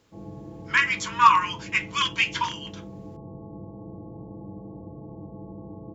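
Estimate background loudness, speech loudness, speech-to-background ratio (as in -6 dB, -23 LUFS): -41.5 LUFS, -22.5 LUFS, 19.0 dB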